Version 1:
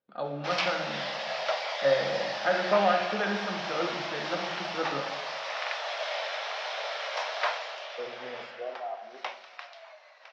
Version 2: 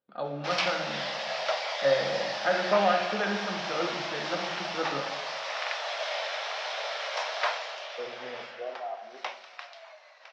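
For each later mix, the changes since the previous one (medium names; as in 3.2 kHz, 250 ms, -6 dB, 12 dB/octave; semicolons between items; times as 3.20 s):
background: remove distance through air 50 m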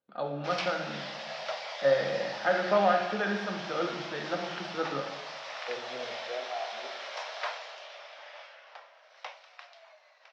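second voice: entry -2.30 s; background -6.5 dB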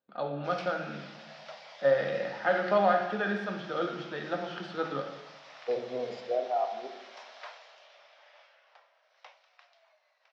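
second voice +7.5 dB; background -10.5 dB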